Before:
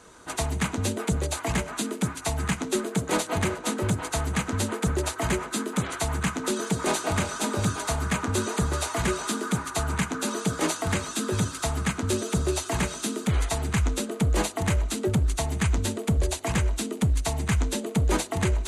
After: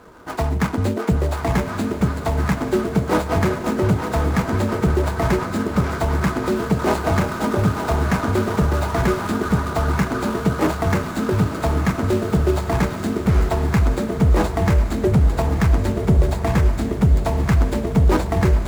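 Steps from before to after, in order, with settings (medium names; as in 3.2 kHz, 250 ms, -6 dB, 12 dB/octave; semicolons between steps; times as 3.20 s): median filter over 15 samples; echo that smears into a reverb 1046 ms, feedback 41%, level -8 dB; trim +7.5 dB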